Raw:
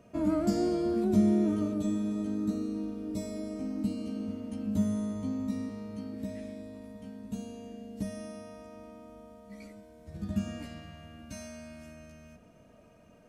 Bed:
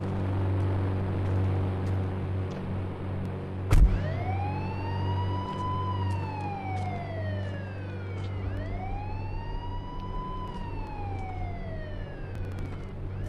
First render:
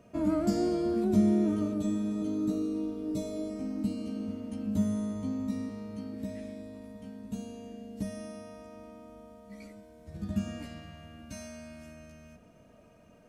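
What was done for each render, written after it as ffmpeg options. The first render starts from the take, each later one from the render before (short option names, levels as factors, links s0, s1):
-filter_complex "[0:a]asettb=1/sr,asplit=3[s0][s1][s2];[s0]atrim=end=2.214[s3];[s1]atrim=start=2.21:end=3.5,asetpts=PTS-STARTPTS,afade=t=in:d=0.004:c=qsin,afade=t=out:st=1.286:d=0.004:c=qsin,aecho=1:1:6.7:0.65,atrim=end_sample=56889[s4];[s2]atrim=start=3.496[s5];[s3][s4]acrossfade=d=0.004:c1=hsin:c2=qsin[s6];[s6][s5]acrossfade=d=0.004:c1=qsin:c2=hsin"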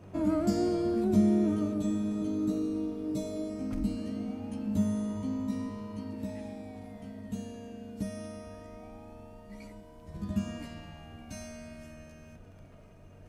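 -filter_complex "[1:a]volume=0.106[s0];[0:a][s0]amix=inputs=2:normalize=0"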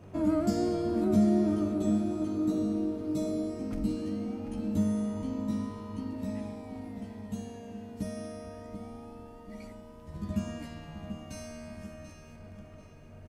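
-filter_complex "[0:a]asplit=2[s0][s1];[s1]adelay=13,volume=0.211[s2];[s0][s2]amix=inputs=2:normalize=0,asplit=2[s3][s4];[s4]adelay=737,lowpass=f=4100:p=1,volume=0.376,asplit=2[s5][s6];[s6]adelay=737,lowpass=f=4100:p=1,volume=0.54,asplit=2[s7][s8];[s8]adelay=737,lowpass=f=4100:p=1,volume=0.54,asplit=2[s9][s10];[s10]adelay=737,lowpass=f=4100:p=1,volume=0.54,asplit=2[s11][s12];[s12]adelay=737,lowpass=f=4100:p=1,volume=0.54,asplit=2[s13][s14];[s14]adelay=737,lowpass=f=4100:p=1,volume=0.54[s15];[s5][s7][s9][s11][s13][s15]amix=inputs=6:normalize=0[s16];[s3][s16]amix=inputs=2:normalize=0"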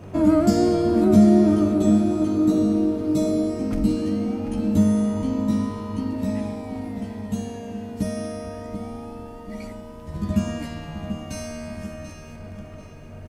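-af "volume=3.16"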